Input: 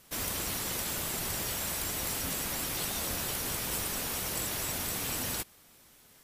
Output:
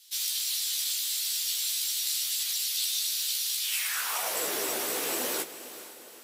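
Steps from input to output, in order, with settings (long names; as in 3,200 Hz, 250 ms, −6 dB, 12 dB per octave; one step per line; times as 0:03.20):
high-pass filter sweep 3,900 Hz → 390 Hz, 0:03.59–0:04.48
multi-voice chorus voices 4, 1.5 Hz, delay 15 ms, depth 3 ms
feedback delay with all-pass diffusion 452 ms, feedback 46%, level −13.5 dB
level +6 dB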